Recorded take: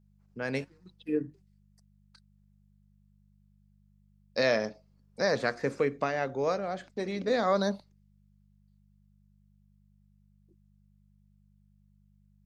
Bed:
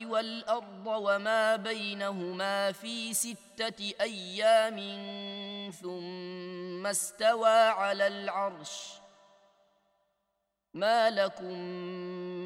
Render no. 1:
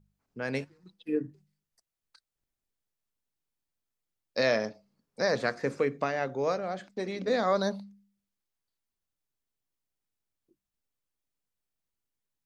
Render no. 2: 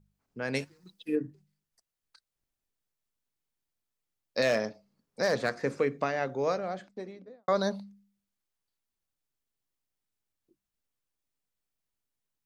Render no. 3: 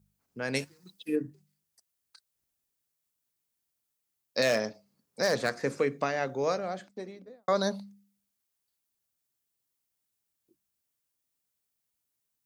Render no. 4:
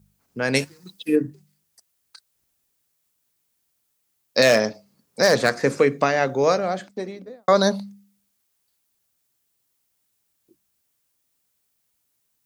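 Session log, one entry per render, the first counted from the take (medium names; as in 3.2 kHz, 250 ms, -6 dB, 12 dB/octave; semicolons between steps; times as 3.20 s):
de-hum 50 Hz, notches 4
0.54–1.16 s: treble shelf 3.8 kHz +11 dB; 4.42–5.50 s: hard clipper -19 dBFS; 6.56–7.48 s: studio fade out
high-pass 53 Hz; treble shelf 6 kHz +10 dB
trim +10 dB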